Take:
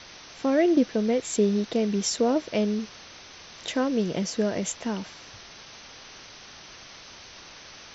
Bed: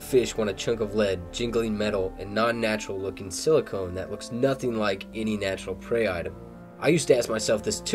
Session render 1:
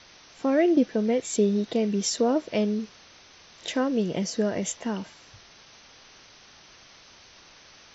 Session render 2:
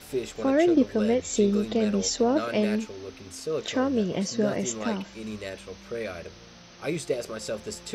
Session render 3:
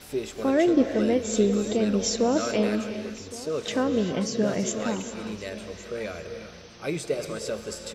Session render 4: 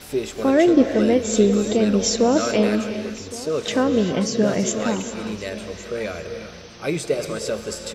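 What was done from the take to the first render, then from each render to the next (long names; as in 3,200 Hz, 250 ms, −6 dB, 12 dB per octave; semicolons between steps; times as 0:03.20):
noise reduction from a noise print 6 dB
mix in bed −8.5 dB
single-tap delay 1,115 ms −18.5 dB; reverb whose tail is shaped and stops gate 420 ms rising, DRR 8 dB
level +5.5 dB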